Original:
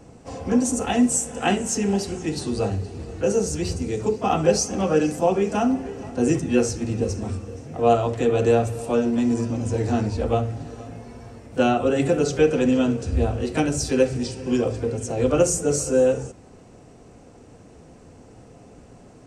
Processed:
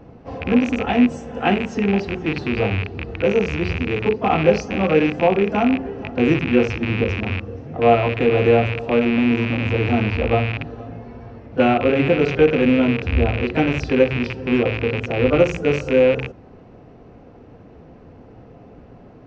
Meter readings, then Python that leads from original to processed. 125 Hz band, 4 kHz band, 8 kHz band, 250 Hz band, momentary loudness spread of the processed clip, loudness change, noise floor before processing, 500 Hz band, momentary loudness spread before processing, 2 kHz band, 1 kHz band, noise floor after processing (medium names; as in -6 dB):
+4.0 dB, +3.5 dB, under -15 dB, +3.5 dB, 9 LU, +3.5 dB, -48 dBFS, +3.5 dB, 11 LU, +10.0 dB, +3.5 dB, -45 dBFS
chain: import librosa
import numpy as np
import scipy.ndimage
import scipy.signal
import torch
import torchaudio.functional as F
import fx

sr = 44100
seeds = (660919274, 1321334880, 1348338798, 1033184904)

y = fx.rattle_buzz(x, sr, strikes_db=-30.0, level_db=-15.0)
y = scipy.ndimage.gaussian_filter1d(y, 2.5, mode='constant')
y = y * librosa.db_to_amplitude(3.5)